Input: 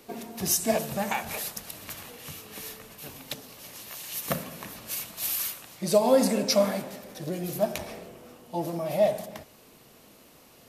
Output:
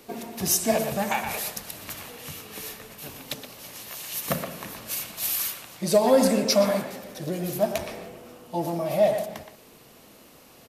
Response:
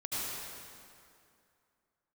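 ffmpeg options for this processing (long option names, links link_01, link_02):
-filter_complex "[0:a]asplit=2[link_01][link_02];[link_02]adelay=120,highpass=300,lowpass=3400,asoftclip=type=hard:threshold=-17dB,volume=-7dB[link_03];[link_01][link_03]amix=inputs=2:normalize=0,acontrast=80,volume=-4.5dB"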